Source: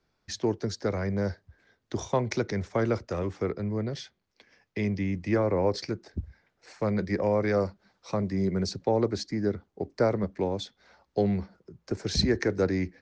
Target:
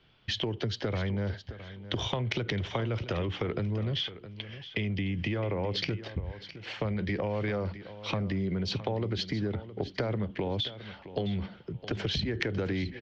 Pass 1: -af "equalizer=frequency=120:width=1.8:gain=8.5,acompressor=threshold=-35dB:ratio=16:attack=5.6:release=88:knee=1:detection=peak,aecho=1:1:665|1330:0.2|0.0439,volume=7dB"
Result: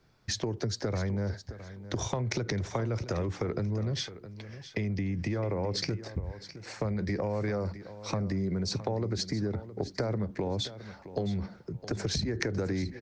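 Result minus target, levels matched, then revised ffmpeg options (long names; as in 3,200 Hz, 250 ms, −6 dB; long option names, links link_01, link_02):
4,000 Hz band −3.0 dB
-af "lowpass=frequency=3100:width_type=q:width=9.2,equalizer=frequency=120:width=1.8:gain=8.5,acompressor=threshold=-35dB:ratio=16:attack=5.6:release=88:knee=1:detection=peak,aecho=1:1:665|1330:0.2|0.0439,volume=7dB"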